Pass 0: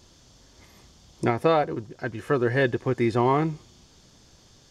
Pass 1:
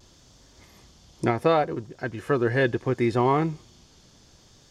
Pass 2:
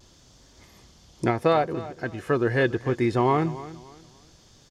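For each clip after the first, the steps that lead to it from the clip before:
vibrato 0.69 Hz 27 cents
feedback delay 287 ms, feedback 29%, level -16.5 dB

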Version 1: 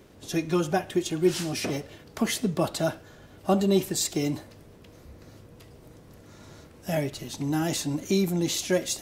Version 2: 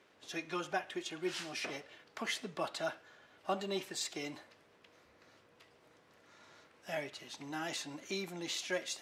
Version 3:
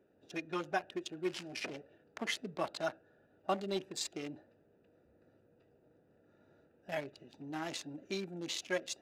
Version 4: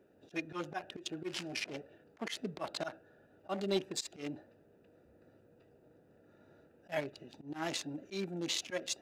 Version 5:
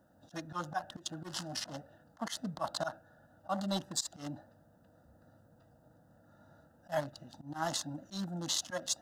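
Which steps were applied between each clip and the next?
band-pass filter 1.9 kHz, Q 0.7; trim -4 dB
local Wiener filter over 41 samples; trim +2 dB
slow attack 108 ms; trim +4 dB
static phaser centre 980 Hz, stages 4; trim +6.5 dB

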